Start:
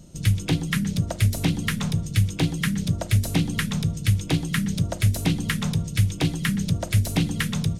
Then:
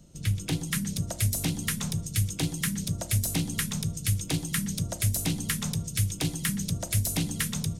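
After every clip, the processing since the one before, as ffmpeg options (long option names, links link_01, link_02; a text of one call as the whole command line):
ffmpeg -i in.wav -filter_complex "[0:a]bandreject=frequency=61.59:width_type=h:width=4,bandreject=frequency=123.18:width_type=h:width=4,bandreject=frequency=184.77:width_type=h:width=4,bandreject=frequency=246.36:width_type=h:width=4,bandreject=frequency=307.95:width_type=h:width=4,bandreject=frequency=369.54:width_type=h:width=4,bandreject=frequency=431.13:width_type=h:width=4,bandreject=frequency=492.72:width_type=h:width=4,bandreject=frequency=554.31:width_type=h:width=4,bandreject=frequency=615.9:width_type=h:width=4,bandreject=frequency=677.49:width_type=h:width=4,bandreject=frequency=739.08:width_type=h:width=4,bandreject=frequency=800.67:width_type=h:width=4,bandreject=frequency=862.26:width_type=h:width=4,bandreject=frequency=923.85:width_type=h:width=4,bandreject=frequency=985.44:width_type=h:width=4,bandreject=frequency=1047.03:width_type=h:width=4,acrossover=split=190|5700[link_01][link_02][link_03];[link_03]dynaudnorm=framelen=310:gausssize=3:maxgain=12dB[link_04];[link_01][link_02][link_04]amix=inputs=3:normalize=0,volume=-6.5dB" out.wav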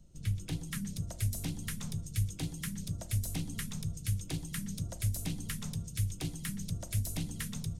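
ffmpeg -i in.wav -af "lowshelf=frequency=110:gain=11.5,flanger=delay=0.9:depth=4.2:regen=77:speed=1.8:shape=triangular,volume=-6.5dB" out.wav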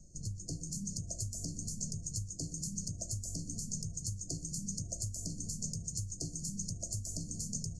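ffmpeg -i in.wav -af "acompressor=threshold=-38dB:ratio=6,lowpass=frequency=6900:width_type=q:width=4.9,afftfilt=real='re*(1-between(b*sr/4096,700,4200))':imag='im*(1-between(b*sr/4096,700,4200))':win_size=4096:overlap=0.75,volume=1dB" out.wav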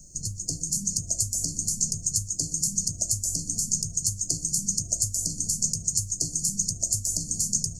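ffmpeg -i in.wav -af "crystalizer=i=3:c=0,volume=4.5dB" out.wav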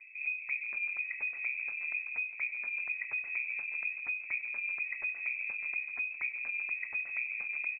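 ffmpeg -i in.wav -filter_complex "[0:a]asplit=2[link_01][link_02];[link_02]highpass=frequency=720:poles=1,volume=12dB,asoftclip=type=tanh:threshold=-7.5dB[link_03];[link_01][link_03]amix=inputs=2:normalize=0,lowpass=frequency=1300:poles=1,volume=-6dB,aecho=1:1:168|336|504|672|840:0.141|0.0805|0.0459|0.0262|0.0149,lowpass=frequency=2200:width_type=q:width=0.5098,lowpass=frequency=2200:width_type=q:width=0.6013,lowpass=frequency=2200:width_type=q:width=0.9,lowpass=frequency=2200:width_type=q:width=2.563,afreqshift=-2600,volume=4dB" out.wav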